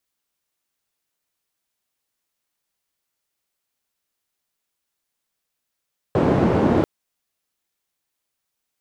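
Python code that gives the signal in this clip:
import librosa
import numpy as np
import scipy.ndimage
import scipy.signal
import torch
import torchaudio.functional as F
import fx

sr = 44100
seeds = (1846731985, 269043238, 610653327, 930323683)

y = fx.band_noise(sr, seeds[0], length_s=0.69, low_hz=100.0, high_hz=430.0, level_db=-17.5)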